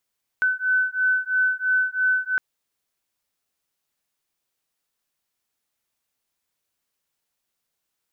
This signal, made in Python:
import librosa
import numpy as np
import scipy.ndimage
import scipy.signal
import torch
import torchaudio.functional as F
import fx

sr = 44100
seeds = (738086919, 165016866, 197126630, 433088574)

y = fx.two_tone_beats(sr, length_s=1.96, hz=1510.0, beat_hz=3.0, level_db=-22.0)